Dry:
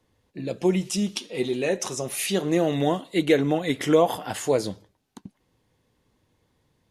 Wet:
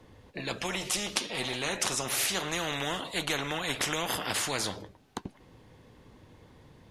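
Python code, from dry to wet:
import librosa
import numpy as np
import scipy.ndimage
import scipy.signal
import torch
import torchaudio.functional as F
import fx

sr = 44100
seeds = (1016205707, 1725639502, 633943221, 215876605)

y = fx.high_shelf(x, sr, hz=4700.0, db=-10.5)
y = fx.spectral_comp(y, sr, ratio=4.0)
y = F.gain(torch.from_numpy(y), 1.0).numpy()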